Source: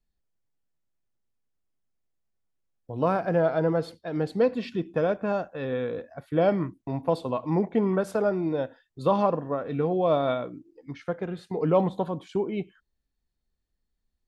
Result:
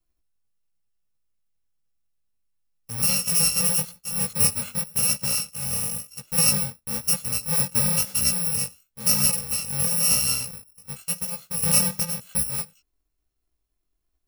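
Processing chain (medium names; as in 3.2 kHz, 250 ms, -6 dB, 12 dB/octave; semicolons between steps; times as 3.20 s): bit-reversed sample order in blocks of 128 samples; chorus 0.97 Hz, delay 15 ms, depth 6.9 ms; trim +5.5 dB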